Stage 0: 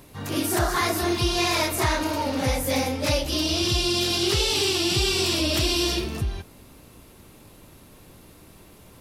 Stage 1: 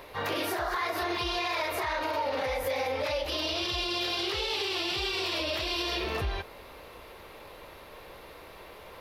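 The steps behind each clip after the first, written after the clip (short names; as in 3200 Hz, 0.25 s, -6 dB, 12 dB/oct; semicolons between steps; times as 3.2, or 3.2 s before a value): graphic EQ 125/250/500/1000/2000/4000/8000 Hz -8/-8/+10/+7/+8/+6/-11 dB; compressor 5:1, threshold -23 dBFS, peak gain reduction 11 dB; limiter -20.5 dBFS, peak gain reduction 8.5 dB; gain -1.5 dB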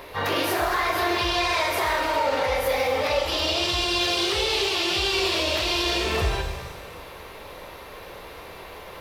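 shimmer reverb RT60 1.3 s, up +7 st, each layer -8 dB, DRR 4 dB; gain +5.5 dB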